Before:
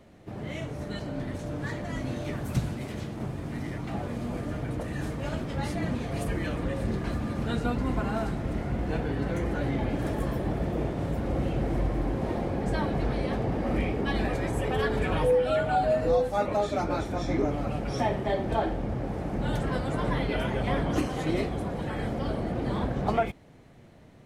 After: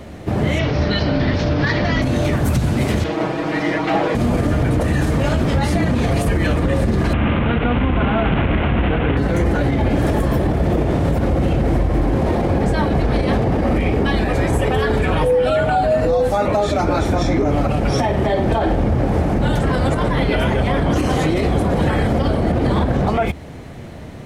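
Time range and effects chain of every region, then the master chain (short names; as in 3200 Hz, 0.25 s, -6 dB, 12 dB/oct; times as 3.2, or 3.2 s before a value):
0.59–2.02 elliptic low-pass 5200 Hz, stop band 60 dB + high shelf 2500 Hz +8.5 dB
3.04–4.15 three-band isolator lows -20 dB, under 280 Hz, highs -17 dB, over 5400 Hz + comb 6.3 ms, depth 76% + hard clip -28.5 dBFS
7.13–9.17 delta modulation 16 kbps, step -28 dBFS + notch 1800 Hz, Q 29 + de-hum 437.5 Hz, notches 33
whole clip: bell 76 Hz +8.5 dB 0.29 oct; compressor, threshold -28 dBFS; maximiser +26.5 dB; gain -8 dB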